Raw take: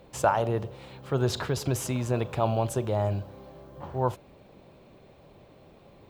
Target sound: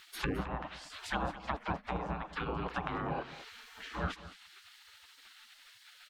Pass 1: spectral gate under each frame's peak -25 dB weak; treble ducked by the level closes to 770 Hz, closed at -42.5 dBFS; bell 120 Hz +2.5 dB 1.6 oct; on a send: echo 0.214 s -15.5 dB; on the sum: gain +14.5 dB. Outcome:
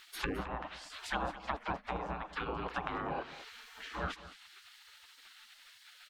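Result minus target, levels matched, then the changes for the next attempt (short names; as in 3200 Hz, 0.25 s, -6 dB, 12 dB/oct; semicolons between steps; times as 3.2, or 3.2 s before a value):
125 Hz band -4.0 dB
change: bell 120 Hz +10.5 dB 1.6 oct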